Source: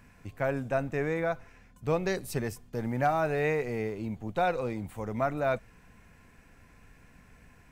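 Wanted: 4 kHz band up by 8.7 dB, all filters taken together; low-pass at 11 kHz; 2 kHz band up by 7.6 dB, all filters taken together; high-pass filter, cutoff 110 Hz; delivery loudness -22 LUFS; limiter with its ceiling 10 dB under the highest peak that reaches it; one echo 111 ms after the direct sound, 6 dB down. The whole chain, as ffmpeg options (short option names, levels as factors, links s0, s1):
-af "highpass=110,lowpass=11000,equalizer=f=2000:t=o:g=8,equalizer=f=4000:t=o:g=8,alimiter=limit=0.106:level=0:latency=1,aecho=1:1:111:0.501,volume=2.99"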